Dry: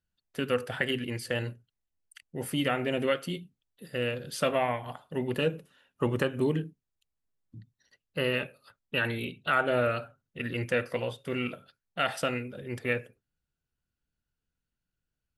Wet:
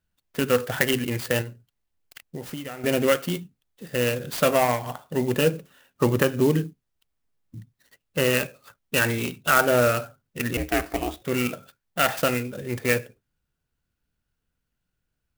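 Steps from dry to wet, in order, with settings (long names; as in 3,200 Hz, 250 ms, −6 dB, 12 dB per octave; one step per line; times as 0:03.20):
0:01.41–0:02.84: downward compressor 16 to 1, threshold −38 dBFS, peak gain reduction 16 dB
0:10.57–0:11.22: ring modulation 190 Hz
converter with an unsteady clock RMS 0.039 ms
level +7 dB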